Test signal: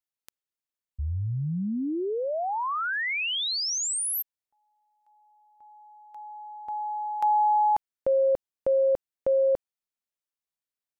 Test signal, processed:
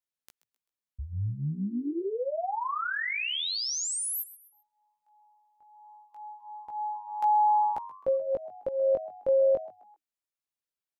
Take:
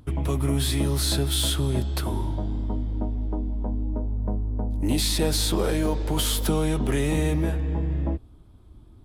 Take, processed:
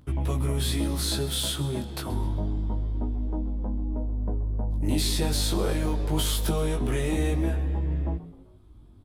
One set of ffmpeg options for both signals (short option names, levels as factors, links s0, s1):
-filter_complex "[0:a]asplit=4[s0][s1][s2][s3];[s1]adelay=130,afreqshift=99,volume=0.141[s4];[s2]adelay=260,afreqshift=198,volume=0.0537[s5];[s3]adelay=390,afreqshift=297,volume=0.0204[s6];[s0][s4][s5][s6]amix=inputs=4:normalize=0,flanger=delay=15.5:depth=5.1:speed=0.27"